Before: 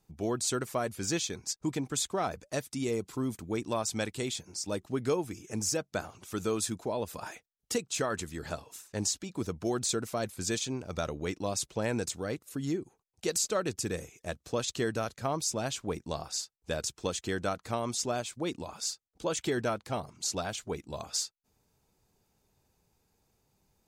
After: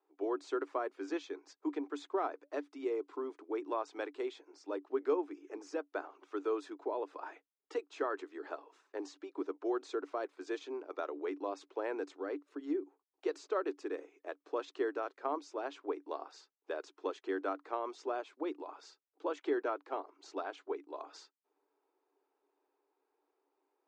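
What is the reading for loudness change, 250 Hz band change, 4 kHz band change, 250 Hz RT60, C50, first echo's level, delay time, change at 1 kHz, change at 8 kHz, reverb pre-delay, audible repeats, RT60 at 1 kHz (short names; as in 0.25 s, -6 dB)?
-6.0 dB, -6.0 dB, -18.0 dB, none, none, none, none, -3.0 dB, under -25 dB, none, none, none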